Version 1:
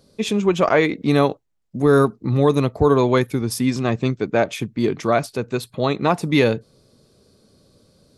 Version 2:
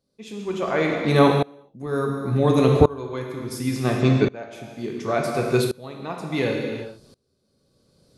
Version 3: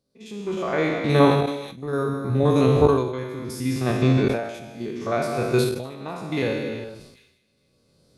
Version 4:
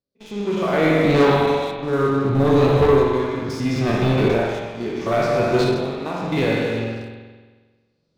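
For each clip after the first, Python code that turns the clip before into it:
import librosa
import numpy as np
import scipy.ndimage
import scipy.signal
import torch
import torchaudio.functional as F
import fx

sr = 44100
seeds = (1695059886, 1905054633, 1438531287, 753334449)

y1 = fx.rev_gated(x, sr, seeds[0], gate_ms=450, shape='falling', drr_db=1.5)
y1 = fx.tremolo_decay(y1, sr, direction='swelling', hz=0.7, depth_db=25)
y1 = F.gain(torch.from_numpy(y1), 3.5).numpy()
y2 = fx.spec_steps(y1, sr, hold_ms=50)
y2 = fx.echo_wet_highpass(y2, sr, ms=248, feedback_pct=63, hz=3300.0, wet_db=-23)
y2 = fx.sustainer(y2, sr, db_per_s=61.0)
y3 = scipy.signal.sosfilt(scipy.signal.butter(4, 6400.0, 'lowpass', fs=sr, output='sos'), y2)
y3 = fx.leveller(y3, sr, passes=3)
y3 = fx.rev_spring(y3, sr, rt60_s=1.4, pass_ms=(44,), chirp_ms=25, drr_db=1.0)
y3 = F.gain(torch.from_numpy(y3), -7.0).numpy()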